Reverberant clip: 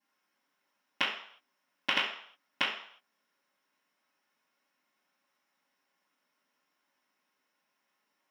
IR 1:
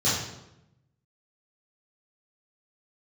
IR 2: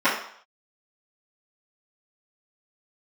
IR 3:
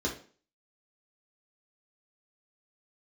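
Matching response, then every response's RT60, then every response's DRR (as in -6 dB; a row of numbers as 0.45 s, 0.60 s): 2; 0.90 s, 0.60 s, 0.45 s; -9.5 dB, -16.0 dB, -2.5 dB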